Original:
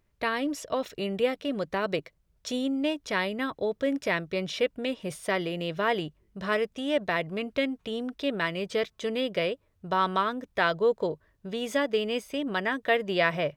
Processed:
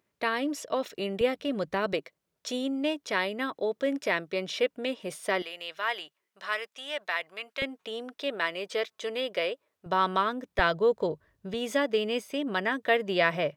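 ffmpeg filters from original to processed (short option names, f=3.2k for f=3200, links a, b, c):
-af "asetnsamples=n=441:p=0,asendcmd='1.21 highpass f 65;1.93 highpass f 250;5.42 highpass f 1000;7.62 highpass f 430;9.86 highpass f 170;10.59 highpass f 55;11.54 highpass f 150',highpass=200"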